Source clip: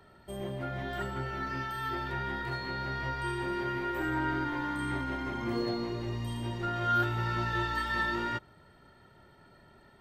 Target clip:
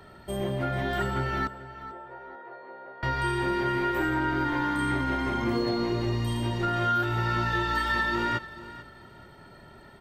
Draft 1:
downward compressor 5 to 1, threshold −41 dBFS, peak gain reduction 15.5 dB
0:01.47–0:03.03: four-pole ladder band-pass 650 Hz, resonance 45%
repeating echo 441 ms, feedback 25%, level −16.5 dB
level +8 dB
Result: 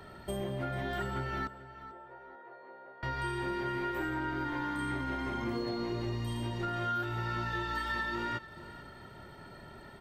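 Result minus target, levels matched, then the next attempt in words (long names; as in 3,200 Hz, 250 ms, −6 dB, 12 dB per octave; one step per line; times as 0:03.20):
downward compressor: peak gain reduction +8 dB
downward compressor 5 to 1, threshold −31 dBFS, peak gain reduction 7.5 dB
0:01.47–0:03.03: four-pole ladder band-pass 650 Hz, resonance 45%
repeating echo 441 ms, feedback 25%, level −16.5 dB
level +8 dB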